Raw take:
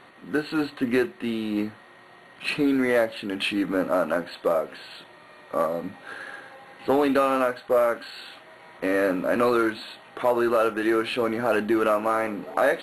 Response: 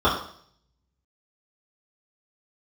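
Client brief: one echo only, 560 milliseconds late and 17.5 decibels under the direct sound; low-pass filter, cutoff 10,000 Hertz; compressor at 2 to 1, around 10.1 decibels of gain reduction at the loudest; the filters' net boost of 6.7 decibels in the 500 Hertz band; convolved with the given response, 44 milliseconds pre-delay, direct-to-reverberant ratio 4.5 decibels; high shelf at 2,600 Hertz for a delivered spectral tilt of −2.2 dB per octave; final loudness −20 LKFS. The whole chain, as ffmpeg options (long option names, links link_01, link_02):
-filter_complex "[0:a]lowpass=10000,equalizer=frequency=500:width_type=o:gain=8.5,highshelf=frequency=2600:gain=-8.5,acompressor=threshold=-30dB:ratio=2,aecho=1:1:560:0.133,asplit=2[link_01][link_02];[1:a]atrim=start_sample=2205,adelay=44[link_03];[link_02][link_03]afir=irnorm=-1:irlink=0,volume=-24.5dB[link_04];[link_01][link_04]amix=inputs=2:normalize=0,volume=7dB"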